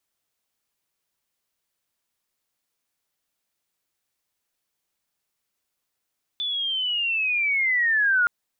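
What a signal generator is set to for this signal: chirp linear 3500 Hz -> 1400 Hz -24.5 dBFS -> -16.5 dBFS 1.87 s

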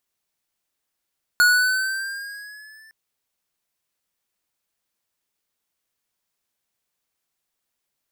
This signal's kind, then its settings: gliding synth tone square, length 1.51 s, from 1450 Hz, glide +3.5 st, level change -35.5 dB, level -13.5 dB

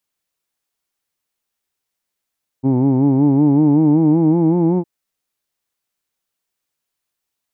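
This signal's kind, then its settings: formant-synthesis vowel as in who'd, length 2.21 s, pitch 128 Hz, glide +5.5 st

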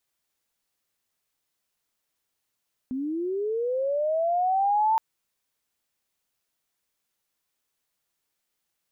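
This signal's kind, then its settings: chirp linear 250 Hz -> 900 Hz -27 dBFS -> -18.5 dBFS 2.07 s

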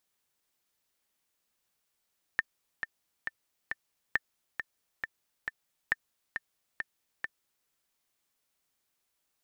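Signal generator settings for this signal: metronome 136 bpm, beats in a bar 4, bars 3, 1790 Hz, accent 7.5 dB -12.5 dBFS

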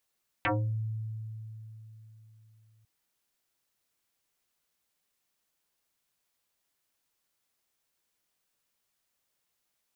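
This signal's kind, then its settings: FM tone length 2.40 s, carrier 110 Hz, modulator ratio 3.81, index 7.1, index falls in 0.33 s exponential, decay 3.79 s, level -24 dB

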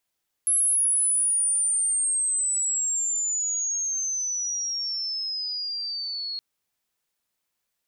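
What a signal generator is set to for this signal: chirp logarithmic 11000 Hz -> 4300 Hz -18.5 dBFS -> -29 dBFS 5.92 s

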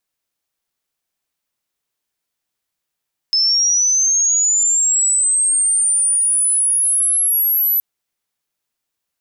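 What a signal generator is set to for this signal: chirp linear 5200 Hz -> 12000 Hz -12 dBFS -> -13 dBFS 4.47 s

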